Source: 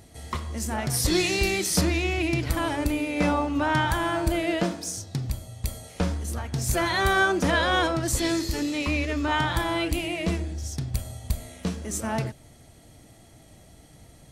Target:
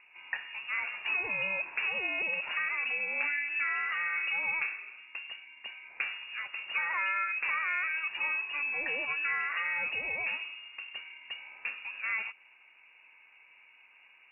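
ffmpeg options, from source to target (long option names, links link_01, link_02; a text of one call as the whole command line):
ffmpeg -i in.wav -filter_complex "[0:a]acrossover=split=310 2000:gain=0.141 1 0.126[link_01][link_02][link_03];[link_01][link_02][link_03]amix=inputs=3:normalize=0,acompressor=threshold=-28dB:ratio=10,lowpass=frequency=2500:width_type=q:width=0.5098,lowpass=frequency=2500:width_type=q:width=0.6013,lowpass=frequency=2500:width_type=q:width=0.9,lowpass=frequency=2500:width_type=q:width=2.563,afreqshift=-2900" out.wav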